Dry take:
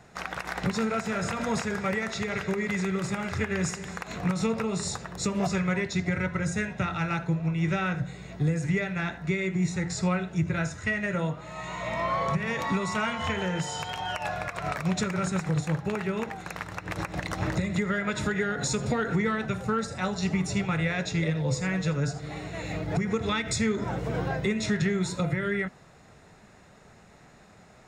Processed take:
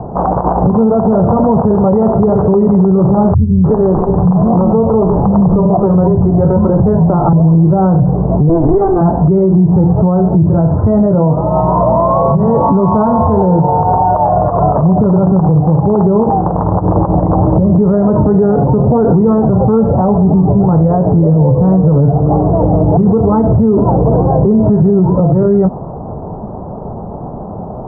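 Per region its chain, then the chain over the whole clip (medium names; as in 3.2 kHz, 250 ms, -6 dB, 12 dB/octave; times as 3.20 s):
3.34–7.33 s: bands offset in time lows, highs 300 ms, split 200 Hz + sliding maximum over 3 samples
8.49–9.01 s: comb filter that takes the minimum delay 2.6 ms + resonant high shelf 2.5 kHz -12.5 dB, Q 1.5
whole clip: steep low-pass 990 Hz 48 dB/octave; compression, threshold -29 dBFS; loudness maximiser +33 dB; trim -2 dB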